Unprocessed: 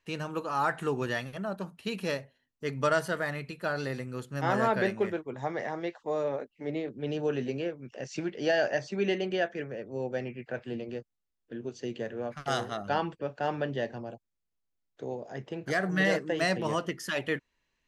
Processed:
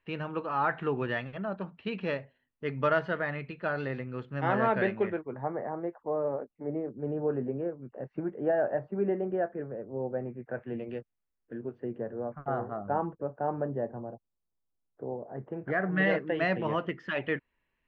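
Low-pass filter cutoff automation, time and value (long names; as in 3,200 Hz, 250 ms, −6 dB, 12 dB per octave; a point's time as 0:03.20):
low-pass filter 24 dB per octave
0:05.01 3,000 Hz
0:05.55 1,300 Hz
0:10.39 1,300 Hz
0:10.95 3,000 Hz
0:12.20 1,200 Hz
0:15.29 1,200 Hz
0:16.08 2,800 Hz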